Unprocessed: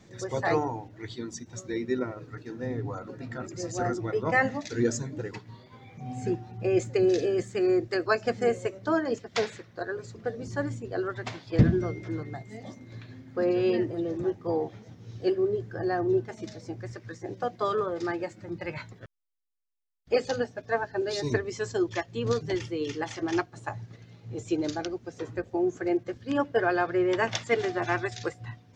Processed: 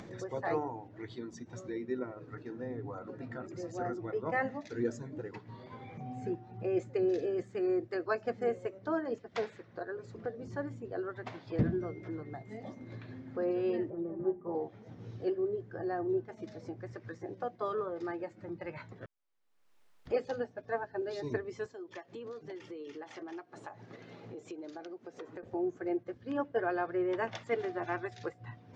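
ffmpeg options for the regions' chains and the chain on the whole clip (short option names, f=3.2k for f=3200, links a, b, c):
-filter_complex "[0:a]asettb=1/sr,asplit=3[a][b][c];[a]atrim=end=13.904[d];[b]atrim=start=13.9:end=14.55,asetpts=PTS-STARTPTS,afade=t=in:d=0.004:c=qsin,afade=t=out:st=0.646:d=0.004:c=qsin,lowpass=1.2k,bandreject=f=60:t=h:w=6,bandreject=f=120:t=h:w=6,bandreject=f=180:t=h:w=6,bandreject=f=240:t=h:w=6,bandreject=f=300:t=h:w=6,bandreject=f=360:t=h:w=6,bandreject=f=420:t=h:w=6,aecho=1:1:5.1:0.68,atrim=end_sample=28665[e];[c]atrim=start=14.546[f];[d][e]acrossfade=d=0.004:c1=hsin:c2=qsin[g];[g][f]acrossfade=d=0.004:c1=qsin:c2=hsin,asettb=1/sr,asplit=3[h][i][j];[h]atrim=end=21.664[k];[i]atrim=start=21.66:end=25.43,asetpts=PTS-STARTPTS,afade=t=in:d=0.004:c=qsin,afade=t=out:st=3.766:d=0.004:c=qsin,highpass=250,acompressor=threshold=-46dB:ratio=2.5:attack=3.2:release=140:knee=1:detection=peak[l];[j]atrim=start=25.426[m];[k][l]acrossfade=d=0.004:c1=hsin:c2=qsin[n];[n][m]acrossfade=d=0.004:c1=qsin:c2=hsin,lowpass=f=1.2k:p=1,lowshelf=f=160:g=-9.5,acompressor=mode=upward:threshold=-31dB:ratio=2.5,volume=-5dB"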